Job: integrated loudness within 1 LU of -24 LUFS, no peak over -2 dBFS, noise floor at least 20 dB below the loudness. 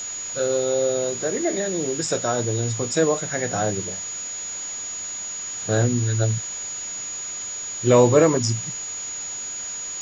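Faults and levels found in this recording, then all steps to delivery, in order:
steady tone 6.8 kHz; tone level -29 dBFS; noise floor -32 dBFS; noise floor target -43 dBFS; loudness -23.0 LUFS; peak level -4.0 dBFS; loudness target -24.0 LUFS
-> band-stop 6.8 kHz, Q 30; noise reduction 11 dB, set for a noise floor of -32 dBFS; trim -1 dB

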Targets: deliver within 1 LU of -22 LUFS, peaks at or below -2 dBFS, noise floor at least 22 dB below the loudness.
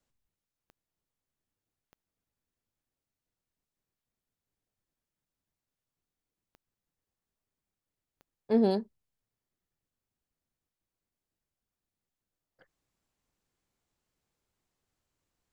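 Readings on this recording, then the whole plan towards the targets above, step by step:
clicks found 4; loudness -28.5 LUFS; peak level -15.0 dBFS; loudness target -22.0 LUFS
-> de-click; trim +6.5 dB

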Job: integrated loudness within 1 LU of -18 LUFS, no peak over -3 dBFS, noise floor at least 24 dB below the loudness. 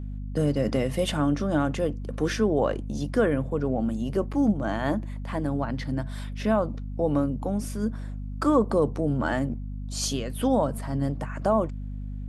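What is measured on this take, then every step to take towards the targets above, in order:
hum 50 Hz; highest harmonic 250 Hz; hum level -31 dBFS; loudness -27.0 LUFS; peak level -10.5 dBFS; loudness target -18.0 LUFS
-> de-hum 50 Hz, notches 5; trim +9 dB; peak limiter -3 dBFS

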